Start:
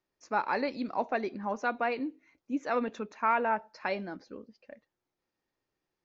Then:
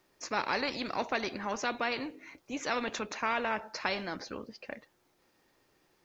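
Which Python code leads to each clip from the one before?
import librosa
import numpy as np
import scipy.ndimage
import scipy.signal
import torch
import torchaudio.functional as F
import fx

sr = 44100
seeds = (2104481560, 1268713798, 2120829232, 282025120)

y = fx.low_shelf(x, sr, hz=140.0, db=-4.5)
y = fx.spectral_comp(y, sr, ratio=2.0)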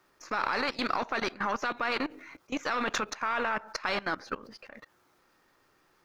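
y = np.where(x < 0.0, 10.0 ** (-3.0 / 20.0) * x, x)
y = fx.peak_eq(y, sr, hz=1300.0, db=9.0, octaves=0.82)
y = fx.level_steps(y, sr, step_db=19)
y = F.gain(torch.from_numpy(y), 8.5).numpy()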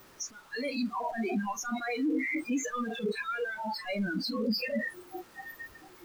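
y = np.sign(x) * np.sqrt(np.mean(np.square(x)))
y = fx.low_shelf(y, sr, hz=490.0, db=5.0)
y = fx.noise_reduce_blind(y, sr, reduce_db=29)
y = F.gain(torch.from_numpy(y), 5.0).numpy()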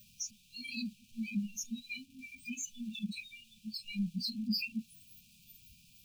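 y = fx.brickwall_bandstop(x, sr, low_hz=240.0, high_hz=2300.0)
y = F.gain(torch.from_numpy(y), -1.5).numpy()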